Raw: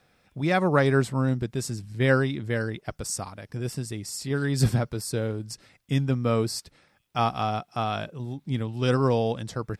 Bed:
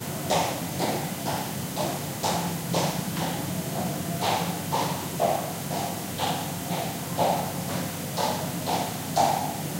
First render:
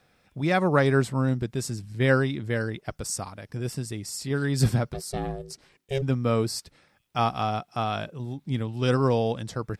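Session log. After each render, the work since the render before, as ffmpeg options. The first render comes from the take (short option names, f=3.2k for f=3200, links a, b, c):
-filter_complex "[0:a]asplit=3[a][b][c];[a]afade=t=out:st=4.93:d=0.02[d];[b]aeval=exprs='val(0)*sin(2*PI*270*n/s)':c=same,afade=t=in:st=4.93:d=0.02,afade=t=out:st=6.01:d=0.02[e];[c]afade=t=in:st=6.01:d=0.02[f];[d][e][f]amix=inputs=3:normalize=0"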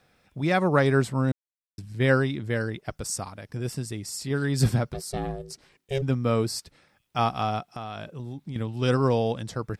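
-filter_complex "[0:a]asettb=1/sr,asplit=3[a][b][c];[a]atrim=end=7.674[d];[b]atrim=start=7.67:end=8.56,asetpts=PTS-STARTPTS,afade=t=in:d=0.004:c=qsin,afade=t=out:st=0.886:d=0.004:c=qsin,acompressor=threshold=-31dB:ratio=10:attack=3.2:release=140:knee=1:detection=peak[e];[c]atrim=start=8.556[f];[d][e]acrossfade=d=0.004:c1=hsin:c2=qsin[g];[g][f]acrossfade=d=0.004:c1=qsin:c2=hsin,asplit=3[h][i][j];[h]atrim=end=1.32,asetpts=PTS-STARTPTS,afade=t=out:st=1.316:d=0.004:c=hsin[k];[i]atrim=start=1.32:end=1.78,asetpts=PTS-STARTPTS,volume=0[l];[j]atrim=start=1.78,asetpts=PTS-STARTPTS,afade=t=in:d=0.004:c=hsin[m];[k][l][m]concat=n=3:v=0:a=1"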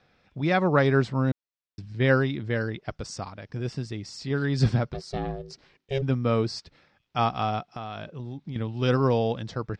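-af "lowpass=f=5.4k:w=0.5412,lowpass=f=5.4k:w=1.3066"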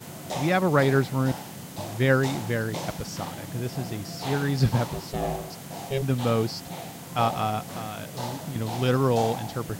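-filter_complex "[1:a]volume=-8dB[a];[0:a][a]amix=inputs=2:normalize=0"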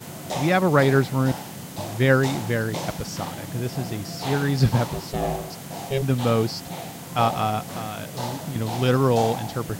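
-af "volume=3dB"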